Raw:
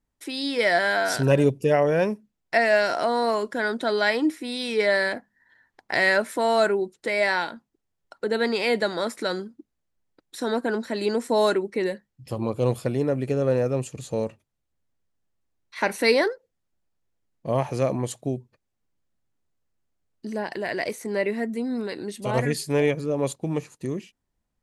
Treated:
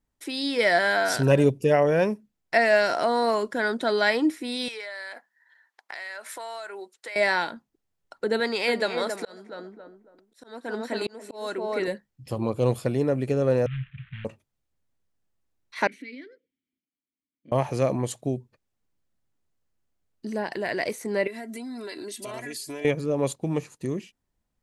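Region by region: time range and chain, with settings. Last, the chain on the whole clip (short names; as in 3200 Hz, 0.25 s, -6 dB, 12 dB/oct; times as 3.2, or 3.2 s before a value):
4.68–7.16 HPF 820 Hz + compressor 12:1, threshold -33 dBFS
8.4–11.88 low shelf 460 Hz -6.5 dB + tape echo 0.273 s, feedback 33%, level -4 dB, low-pass 1200 Hz + auto swell 0.47 s
13.66–14.25 CVSD 16 kbps + elliptic band-stop 150–1600 Hz, stop band 60 dB
15.87–17.52 compressor 3:1, threshold -28 dBFS + transient shaper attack -2 dB, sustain +10 dB + vowel filter i
21.27–22.85 tilt +2 dB/oct + comb 3 ms, depth 76% + compressor, threshold -33 dBFS
whole clip: dry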